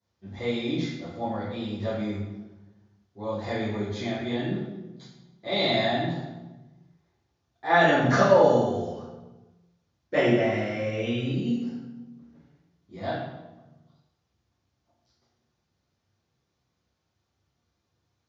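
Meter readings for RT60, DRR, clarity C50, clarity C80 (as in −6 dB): 1.1 s, −13.5 dB, 0.5 dB, 3.5 dB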